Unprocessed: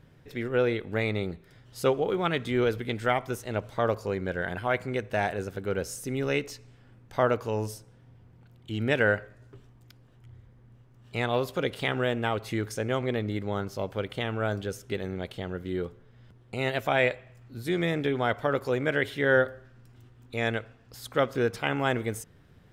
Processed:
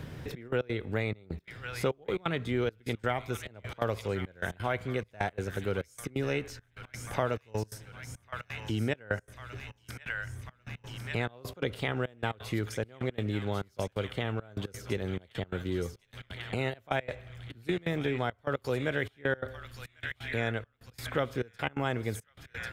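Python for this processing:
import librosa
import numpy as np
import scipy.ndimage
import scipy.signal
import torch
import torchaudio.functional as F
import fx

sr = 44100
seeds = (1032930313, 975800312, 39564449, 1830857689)

y = fx.peak_eq(x, sr, hz=72.0, db=11.0, octaves=0.96)
y = fx.echo_wet_highpass(y, sr, ms=1095, feedback_pct=54, hz=1800.0, wet_db=-8.5)
y = fx.step_gate(y, sr, bpm=173, pattern='xxxx..x.x', floor_db=-24.0, edge_ms=4.5)
y = fx.band_squash(y, sr, depth_pct=70)
y = y * librosa.db_to_amplitude(-4.0)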